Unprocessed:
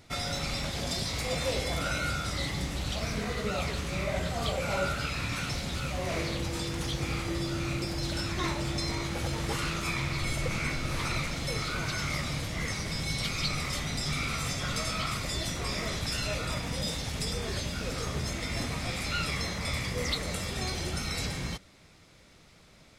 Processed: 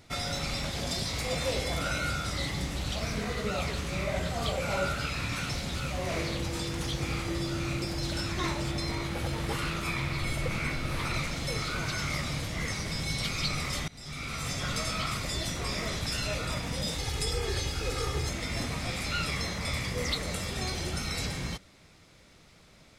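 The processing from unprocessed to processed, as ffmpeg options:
ffmpeg -i in.wav -filter_complex "[0:a]asettb=1/sr,asplit=3[link_01][link_02][link_03];[link_01]atrim=end=8.714[link_04];[link_02]atrim=start=8.71:end=11.14,asetpts=PTS-STARTPTS,afade=type=in:duration=0.004:curve=qsin,afade=type=out:start_time=2.426:duration=0.004:curve=qsin,equalizer=frequency=6400:width=1.4:gain=-5[link_05];[link_03]atrim=start=11.136[link_06];[link_04][link_05]acrossfade=duration=0.004:curve1=hsin:curve2=qsin[link_07];[link_07][link_06]acrossfade=duration=0.004:curve1=qsin:curve2=hsin,asettb=1/sr,asplit=3[link_08][link_09][link_10];[link_08]atrim=end=16.984[link_11];[link_09]atrim=start=16.98:end=18.29,asetpts=PTS-STARTPTS,afade=type=in:duration=0.004:curve=qsin,afade=type=out:start_time=1.306:duration=0.004:curve=qsin,aecho=1:1:2.4:0.73,atrim=end_sample=57771[link_12];[link_10]atrim=start=18.286[link_13];[link_11][link_12]acrossfade=duration=0.004:curve1=hsin:curve2=qsin[link_14];[link_14][link_13]acrossfade=duration=0.004:curve1=qsin:curve2=hsin,asplit=2[link_15][link_16];[link_15]atrim=end=13.88,asetpts=PTS-STARTPTS,afade=type=out:start_time=13.876:duration=0.004:curve=hsin:silence=0.0668344[link_17];[link_16]atrim=start=13.88,asetpts=PTS-STARTPTS,afade=type=in:duration=0.71:silence=0.0668344[link_18];[link_17][link_18]concat=n=2:v=0:a=1" out.wav

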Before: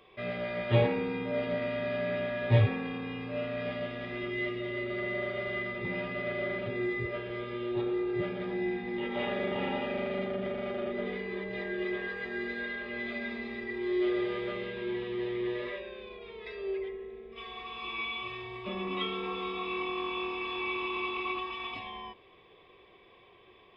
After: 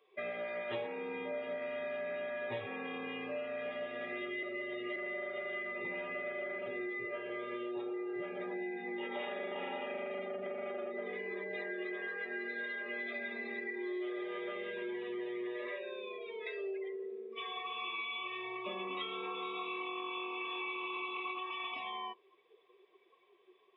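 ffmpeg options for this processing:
ffmpeg -i in.wav -filter_complex "[0:a]asplit=3[link_01][link_02][link_03];[link_01]atrim=end=4.432[link_04];[link_02]atrim=start=4.428:end=4.962,asetpts=PTS-STARTPTS,areverse[link_05];[link_03]atrim=start=4.958[link_06];[link_04][link_05]acrossfade=duration=0.004:curve1=hsin:curve2=hsin[link_07];[link_07][link_06]acrossfade=duration=0.004:curve1=hsin:curve2=hsin,afftdn=noise_reduction=18:noise_floor=-45,highpass=390,acompressor=threshold=-42dB:ratio=6,volume=4.5dB" out.wav

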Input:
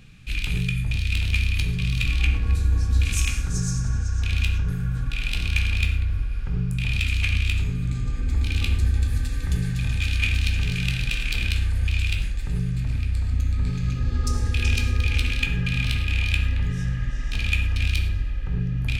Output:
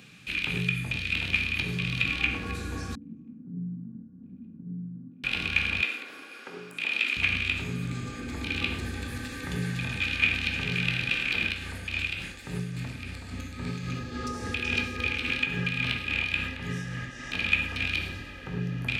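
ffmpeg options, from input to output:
ffmpeg -i in.wav -filter_complex "[0:a]asettb=1/sr,asplit=3[link_01][link_02][link_03];[link_01]atrim=end=2.954[link_04];[link_02]atrim=start=2.95:end=5.24,asetpts=PTS-STARTPTS,afade=type=in:duration=0.004:curve=qsin,afade=type=out:start_time=2.286:duration=0.004:curve=qsin,asuperpass=centerf=210:order=4:qfactor=2.1[link_05];[link_03]atrim=start=5.236[link_06];[link_04][link_05]acrossfade=duration=0.004:curve1=hsin:curve2=qsin[link_07];[link_07][link_06]acrossfade=duration=0.004:curve1=qsin:curve2=hsin,asettb=1/sr,asplit=3[link_08][link_09][link_10];[link_08]atrim=end=5.824[link_11];[link_09]atrim=start=5.82:end=7.17,asetpts=PTS-STARTPTS,afade=type=in:duration=0.004:curve=qsin,afade=type=out:start_time=1.346:duration=0.004:curve=qsin,highpass=frequency=290:width=0.5412,highpass=frequency=290:width=1.3066[link_12];[link_10]atrim=start=7.166[link_13];[link_11][link_12]acrossfade=duration=0.004:curve1=hsin:curve2=qsin[link_14];[link_14][link_13]acrossfade=duration=0.004:curve1=qsin:curve2=hsin,asettb=1/sr,asplit=3[link_15][link_16][link_17];[link_15]atrim=end=11.444[link_18];[link_16]atrim=start=11.44:end=17.26,asetpts=PTS-STARTPTS,afade=type=in:duration=0.004:curve=qsin,afade=type=out:start_time=5.816:duration=0.004:curve=qsin,tremolo=f=3.6:d=0.41[link_19];[link_17]atrim=start=17.256[link_20];[link_18][link_19]acrossfade=duration=0.004:curve1=hsin:curve2=qsin[link_21];[link_21][link_20]acrossfade=duration=0.004:curve1=qsin:curve2=hsin,acrossover=split=3400[link_22][link_23];[link_23]acompressor=threshold=-50dB:ratio=4:attack=1:release=60[link_24];[link_22][link_24]amix=inputs=2:normalize=0,highpass=230,volume=4dB" out.wav

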